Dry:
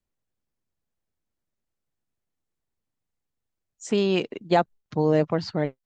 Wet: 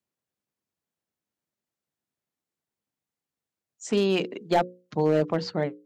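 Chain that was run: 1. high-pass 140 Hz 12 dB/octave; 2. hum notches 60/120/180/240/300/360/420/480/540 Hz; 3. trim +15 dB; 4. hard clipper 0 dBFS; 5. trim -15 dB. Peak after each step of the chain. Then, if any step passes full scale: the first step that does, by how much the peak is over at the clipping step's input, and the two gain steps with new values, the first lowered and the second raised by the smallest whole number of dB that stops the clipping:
-7.0 dBFS, -6.0 dBFS, +9.0 dBFS, 0.0 dBFS, -15.0 dBFS; step 3, 9.0 dB; step 3 +6 dB, step 5 -6 dB

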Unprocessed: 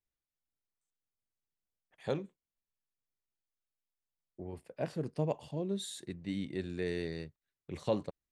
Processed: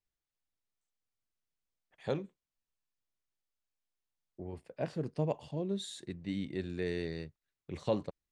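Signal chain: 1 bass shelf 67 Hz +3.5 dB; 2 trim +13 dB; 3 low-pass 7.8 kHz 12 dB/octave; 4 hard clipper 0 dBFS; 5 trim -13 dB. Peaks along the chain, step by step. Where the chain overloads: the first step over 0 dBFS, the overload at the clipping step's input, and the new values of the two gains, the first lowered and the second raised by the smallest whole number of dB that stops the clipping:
-18.0 dBFS, -5.0 dBFS, -5.0 dBFS, -5.0 dBFS, -18.0 dBFS; nothing clips

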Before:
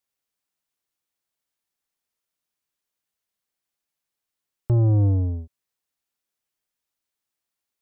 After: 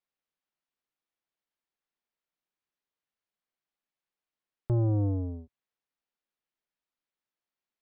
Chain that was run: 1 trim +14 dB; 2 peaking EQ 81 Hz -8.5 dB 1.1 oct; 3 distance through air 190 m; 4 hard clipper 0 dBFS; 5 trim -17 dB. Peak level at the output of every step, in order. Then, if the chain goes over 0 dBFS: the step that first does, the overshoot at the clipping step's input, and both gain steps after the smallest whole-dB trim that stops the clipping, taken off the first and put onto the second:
-2.0 dBFS, -2.0 dBFS, -2.5 dBFS, -2.5 dBFS, -19.5 dBFS; nothing clips

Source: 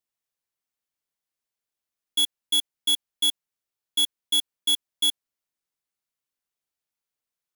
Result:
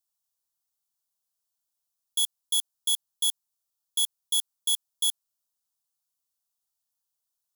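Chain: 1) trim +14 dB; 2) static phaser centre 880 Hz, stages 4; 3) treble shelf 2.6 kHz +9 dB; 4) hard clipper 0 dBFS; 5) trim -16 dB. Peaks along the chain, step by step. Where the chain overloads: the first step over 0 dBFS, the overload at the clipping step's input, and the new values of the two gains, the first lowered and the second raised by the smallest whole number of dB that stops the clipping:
-6.0 dBFS, -2.5 dBFS, +5.5 dBFS, 0.0 dBFS, -16.0 dBFS; step 3, 5.5 dB; step 1 +8 dB, step 5 -10 dB

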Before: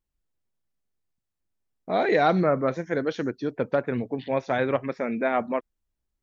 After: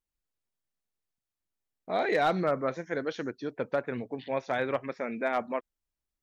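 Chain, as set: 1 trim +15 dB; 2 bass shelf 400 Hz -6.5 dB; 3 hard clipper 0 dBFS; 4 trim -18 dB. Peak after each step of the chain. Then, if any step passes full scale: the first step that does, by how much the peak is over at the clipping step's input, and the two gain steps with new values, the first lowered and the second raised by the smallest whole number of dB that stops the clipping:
+6.5 dBFS, +5.5 dBFS, 0.0 dBFS, -18.0 dBFS; step 1, 5.5 dB; step 1 +9 dB, step 4 -12 dB

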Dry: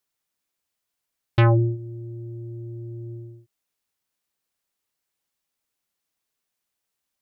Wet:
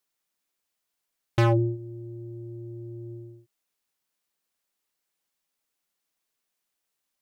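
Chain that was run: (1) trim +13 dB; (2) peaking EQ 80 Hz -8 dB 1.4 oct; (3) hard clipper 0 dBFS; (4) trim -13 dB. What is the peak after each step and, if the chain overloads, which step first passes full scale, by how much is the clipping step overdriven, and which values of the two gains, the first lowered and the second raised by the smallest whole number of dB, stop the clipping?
+4.5 dBFS, +6.0 dBFS, 0.0 dBFS, -13.0 dBFS; step 1, 6.0 dB; step 1 +7 dB, step 4 -7 dB

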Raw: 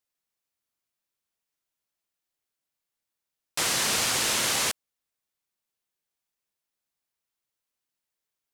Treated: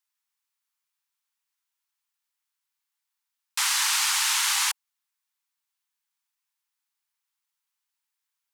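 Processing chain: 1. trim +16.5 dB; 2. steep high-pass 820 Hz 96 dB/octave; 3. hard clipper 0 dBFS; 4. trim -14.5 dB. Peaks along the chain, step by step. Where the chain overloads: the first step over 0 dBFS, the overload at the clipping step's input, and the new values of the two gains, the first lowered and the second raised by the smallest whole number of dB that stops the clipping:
+3.0 dBFS, +3.0 dBFS, 0.0 dBFS, -14.5 dBFS; step 1, 3.0 dB; step 1 +13.5 dB, step 4 -11.5 dB

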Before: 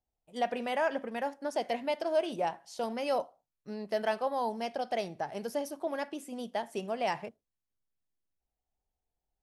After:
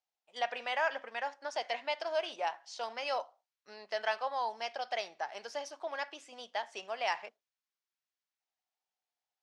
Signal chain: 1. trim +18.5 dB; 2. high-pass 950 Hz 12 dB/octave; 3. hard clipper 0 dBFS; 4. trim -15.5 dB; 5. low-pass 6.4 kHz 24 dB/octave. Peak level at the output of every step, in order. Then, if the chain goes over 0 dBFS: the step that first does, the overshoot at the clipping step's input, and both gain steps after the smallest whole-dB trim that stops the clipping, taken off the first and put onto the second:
-0.5 dBFS, -3.5 dBFS, -3.5 dBFS, -19.0 dBFS, -19.0 dBFS; nothing clips

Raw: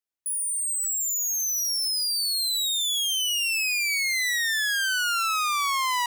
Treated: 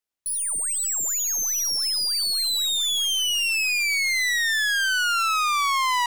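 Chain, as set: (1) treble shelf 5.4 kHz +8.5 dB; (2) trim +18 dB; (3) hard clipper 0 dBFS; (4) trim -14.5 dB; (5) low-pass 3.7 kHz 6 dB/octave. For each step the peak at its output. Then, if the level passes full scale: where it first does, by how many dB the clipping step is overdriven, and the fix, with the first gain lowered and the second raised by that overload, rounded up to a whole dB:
-12.5 dBFS, +5.5 dBFS, 0.0 dBFS, -14.5 dBFS, -17.0 dBFS; step 2, 5.5 dB; step 2 +12 dB, step 4 -8.5 dB

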